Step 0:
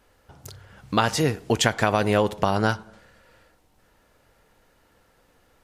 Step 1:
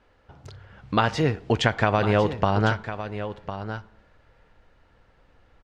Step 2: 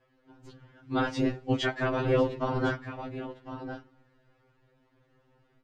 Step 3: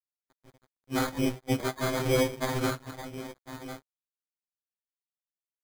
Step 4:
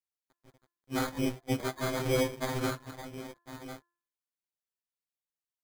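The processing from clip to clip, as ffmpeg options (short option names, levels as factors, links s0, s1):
-af "lowpass=3500,asubboost=boost=2:cutoff=150,aecho=1:1:1054:0.282"
-af "afftfilt=real='hypot(re,im)*cos(2*PI*random(0))':imag='hypot(re,im)*sin(2*PI*random(1))':win_size=512:overlap=0.75,superequalizer=6b=3.98:7b=1.58,afftfilt=real='re*2.45*eq(mod(b,6),0)':imag='im*2.45*eq(mod(b,6),0)':win_size=2048:overlap=0.75"
-filter_complex "[0:a]acrossover=split=190|1400[s0][s1][s2];[s2]alimiter=level_in=2.11:limit=0.0631:level=0:latency=1:release=333,volume=0.473[s3];[s0][s1][s3]amix=inputs=3:normalize=0,acrusher=samples=16:mix=1:aa=0.000001,aeval=exprs='sgn(val(0))*max(abs(val(0))-0.00376,0)':c=same"
-af "bandreject=f=344.6:t=h:w=4,bandreject=f=689.2:t=h:w=4,bandreject=f=1033.8:t=h:w=4,bandreject=f=1378.4:t=h:w=4,bandreject=f=1723:t=h:w=4,volume=0.708"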